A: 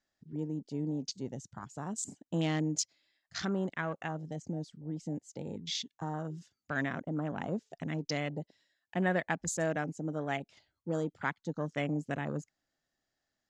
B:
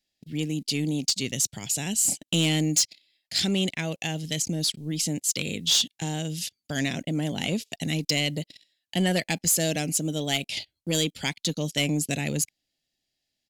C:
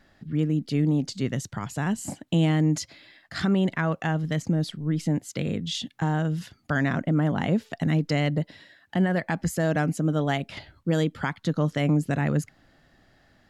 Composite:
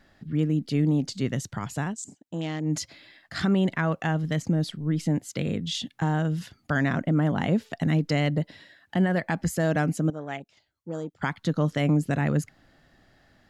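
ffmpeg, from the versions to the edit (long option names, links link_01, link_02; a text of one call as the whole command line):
ffmpeg -i take0.wav -i take1.wav -i take2.wav -filter_complex "[0:a]asplit=2[link_01][link_02];[2:a]asplit=3[link_03][link_04][link_05];[link_03]atrim=end=1.96[link_06];[link_01]atrim=start=1.8:end=2.77[link_07];[link_04]atrim=start=2.61:end=10.102[link_08];[link_02]atrim=start=10.098:end=11.222[link_09];[link_05]atrim=start=11.218[link_10];[link_06][link_07]acrossfade=duration=0.16:curve1=tri:curve2=tri[link_11];[link_11][link_08]acrossfade=duration=0.16:curve1=tri:curve2=tri[link_12];[link_12][link_09]acrossfade=duration=0.004:curve1=hsin:curve2=hsin[link_13];[link_13][link_10]acrossfade=duration=0.004:curve1=hsin:curve2=hsin" out.wav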